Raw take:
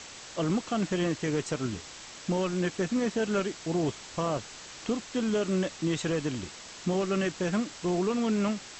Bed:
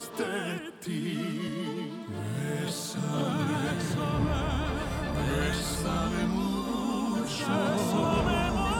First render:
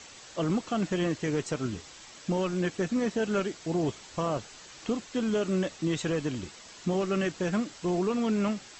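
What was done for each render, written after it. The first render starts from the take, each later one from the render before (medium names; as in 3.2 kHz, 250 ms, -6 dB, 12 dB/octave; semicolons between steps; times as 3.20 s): noise reduction 6 dB, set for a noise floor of -46 dBFS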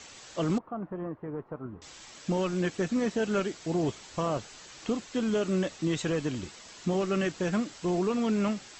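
0.58–1.82 s: four-pole ladder low-pass 1.3 kHz, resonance 40%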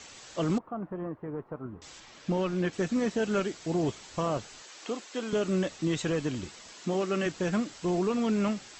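2.00–2.73 s: distance through air 97 m; 4.62–5.33 s: high-pass 360 Hz; 6.72–7.26 s: high-pass 190 Hz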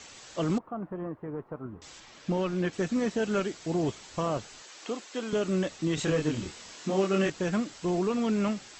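5.95–7.30 s: doubling 26 ms -2 dB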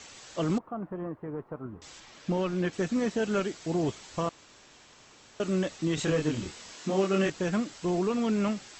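4.29–5.40 s: room tone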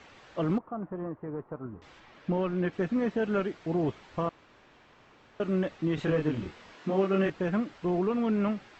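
low-pass 2.3 kHz 12 dB/octave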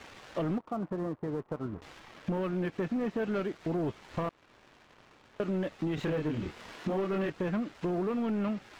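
waveshaping leveller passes 2; compression 2.5:1, threshold -34 dBFS, peak gain reduction 10.5 dB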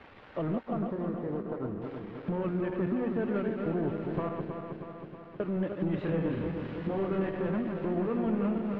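backward echo that repeats 159 ms, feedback 78%, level -5 dB; distance through air 390 m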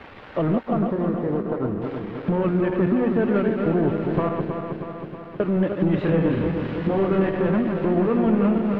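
trim +10 dB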